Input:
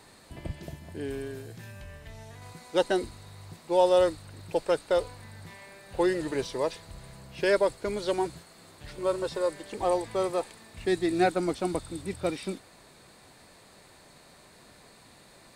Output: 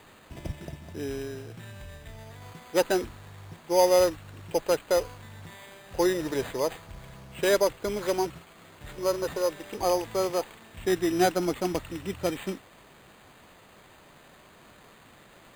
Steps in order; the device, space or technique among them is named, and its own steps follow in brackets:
crushed at another speed (tape speed factor 0.5×; decimation without filtering 16×; tape speed factor 2×)
level +1 dB

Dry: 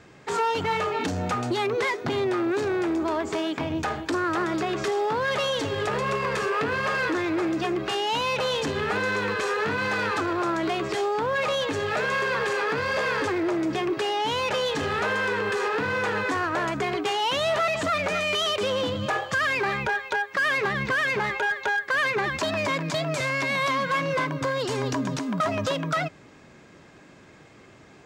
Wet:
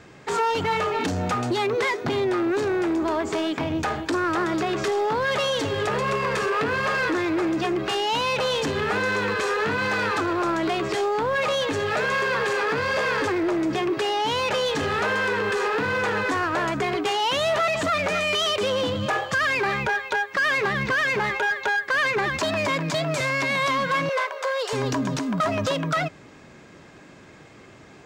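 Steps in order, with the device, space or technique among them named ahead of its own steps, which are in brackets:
parallel distortion (in parallel at −7 dB: hard clipping −28.5 dBFS, distortion −8 dB)
0:24.09–0:24.73: on the sum: Chebyshev high-pass filter 430 Hz, order 6

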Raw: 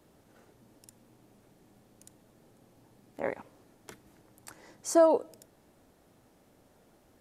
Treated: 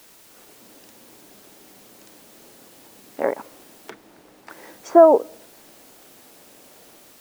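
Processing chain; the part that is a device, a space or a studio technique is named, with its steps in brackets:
treble cut that deepens with the level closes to 1,300 Hz, closed at −30.5 dBFS
dictaphone (band-pass filter 260–3,700 Hz; automatic gain control gain up to 8 dB; tape wow and flutter; white noise bed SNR 26 dB)
0:03.90–0:04.50: high-shelf EQ 3,700 Hz −10.5 dB
level +3.5 dB

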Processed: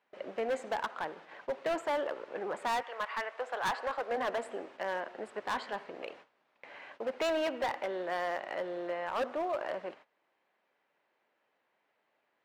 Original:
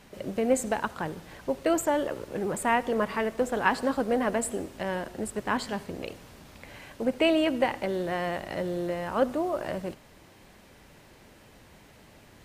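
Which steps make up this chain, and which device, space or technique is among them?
0:02.82–0:04.16: high-pass filter 1,100 Hz → 390 Hz 12 dB per octave
walkie-talkie (band-pass filter 570–2,400 Hz; hard clipping −28 dBFS, distortion −8 dB; noise gate −52 dBFS, range −18 dB)

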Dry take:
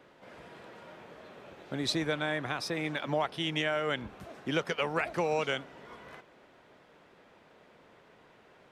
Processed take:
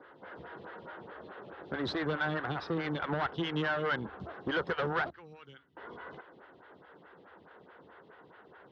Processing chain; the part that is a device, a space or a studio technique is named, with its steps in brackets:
0:05.10–0:05.77: guitar amp tone stack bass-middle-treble 6-0-2
vibe pedal into a guitar amplifier (phaser with staggered stages 4.7 Hz; tube saturation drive 35 dB, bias 0.55; loudspeaker in its box 75–3,600 Hz, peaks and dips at 76 Hz +8 dB, 240 Hz −4 dB, 620 Hz −6 dB, 1,500 Hz +5 dB, 2,400 Hz −10 dB)
level +9 dB

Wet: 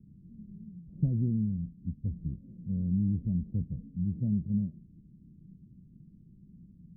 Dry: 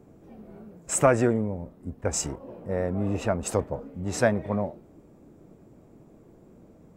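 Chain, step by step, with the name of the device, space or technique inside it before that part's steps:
the neighbour's flat through the wall (low-pass filter 200 Hz 24 dB per octave; parametric band 180 Hz +6.5 dB 0.47 octaves)

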